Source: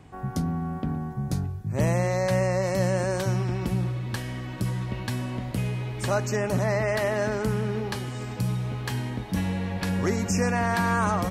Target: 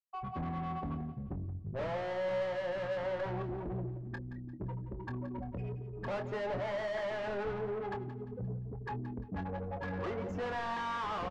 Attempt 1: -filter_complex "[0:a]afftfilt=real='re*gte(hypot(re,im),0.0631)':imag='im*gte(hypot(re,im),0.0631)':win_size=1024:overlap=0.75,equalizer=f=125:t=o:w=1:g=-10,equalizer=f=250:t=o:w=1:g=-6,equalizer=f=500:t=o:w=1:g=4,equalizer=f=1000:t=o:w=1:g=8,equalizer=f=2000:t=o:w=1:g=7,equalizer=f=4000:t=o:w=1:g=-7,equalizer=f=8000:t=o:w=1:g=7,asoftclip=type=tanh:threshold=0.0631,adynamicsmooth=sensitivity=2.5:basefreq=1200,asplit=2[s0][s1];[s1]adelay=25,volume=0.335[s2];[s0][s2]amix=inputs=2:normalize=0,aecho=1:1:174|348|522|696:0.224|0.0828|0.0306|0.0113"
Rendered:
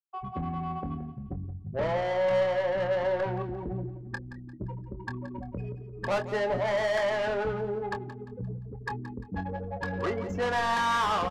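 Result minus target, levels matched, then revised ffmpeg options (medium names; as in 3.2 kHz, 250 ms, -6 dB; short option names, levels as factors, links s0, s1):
saturation: distortion -5 dB
-filter_complex "[0:a]afftfilt=real='re*gte(hypot(re,im),0.0631)':imag='im*gte(hypot(re,im),0.0631)':win_size=1024:overlap=0.75,equalizer=f=125:t=o:w=1:g=-10,equalizer=f=250:t=o:w=1:g=-6,equalizer=f=500:t=o:w=1:g=4,equalizer=f=1000:t=o:w=1:g=8,equalizer=f=2000:t=o:w=1:g=7,equalizer=f=4000:t=o:w=1:g=-7,equalizer=f=8000:t=o:w=1:g=7,asoftclip=type=tanh:threshold=0.02,adynamicsmooth=sensitivity=2.5:basefreq=1200,asplit=2[s0][s1];[s1]adelay=25,volume=0.335[s2];[s0][s2]amix=inputs=2:normalize=0,aecho=1:1:174|348|522|696:0.224|0.0828|0.0306|0.0113"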